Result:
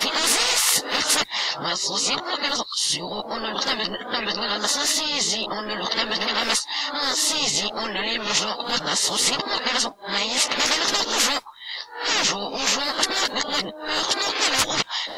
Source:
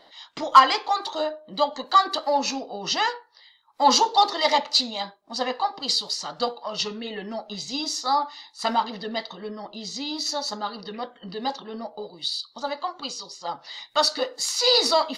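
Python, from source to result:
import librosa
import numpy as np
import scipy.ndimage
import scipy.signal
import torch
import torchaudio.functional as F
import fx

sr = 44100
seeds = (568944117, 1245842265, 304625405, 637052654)

y = x[::-1].copy()
y = fx.chorus_voices(y, sr, voices=6, hz=0.21, base_ms=12, depth_ms=2.9, mix_pct=35)
y = fx.spectral_comp(y, sr, ratio=10.0)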